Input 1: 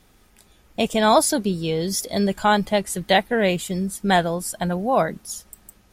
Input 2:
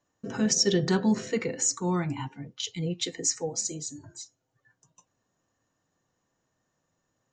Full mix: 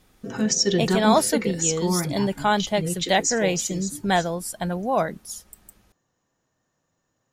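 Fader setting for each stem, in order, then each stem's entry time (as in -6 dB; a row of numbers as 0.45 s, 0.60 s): -3.0 dB, +2.5 dB; 0.00 s, 0.00 s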